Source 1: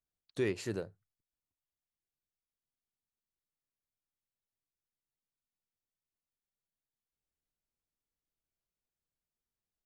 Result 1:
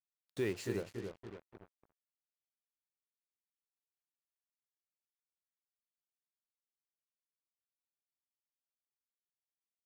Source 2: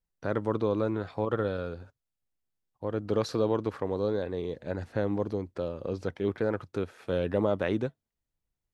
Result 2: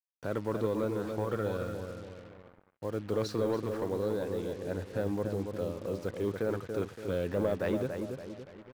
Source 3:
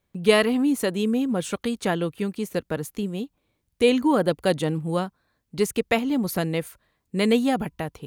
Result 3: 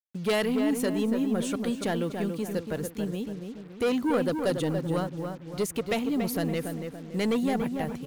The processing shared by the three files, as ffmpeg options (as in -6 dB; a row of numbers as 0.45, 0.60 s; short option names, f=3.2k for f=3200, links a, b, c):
-filter_complex "[0:a]asoftclip=type=tanh:threshold=-18.5dB,asplit=2[a][b];[b]adelay=284,lowpass=f=1.9k:p=1,volume=-5.5dB,asplit=2[c][d];[d]adelay=284,lowpass=f=1.9k:p=1,volume=0.46,asplit=2[e][f];[f]adelay=284,lowpass=f=1.9k:p=1,volume=0.46,asplit=2[g][h];[h]adelay=284,lowpass=f=1.9k:p=1,volume=0.46,asplit=2[i][j];[j]adelay=284,lowpass=f=1.9k:p=1,volume=0.46,asplit=2[k][l];[l]adelay=284,lowpass=f=1.9k:p=1,volume=0.46[m];[a][c][e][g][i][k][m]amix=inputs=7:normalize=0,acrusher=bits=7:mix=0:aa=0.5,volume=-2.5dB"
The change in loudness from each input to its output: -3.0, -3.0, -4.5 LU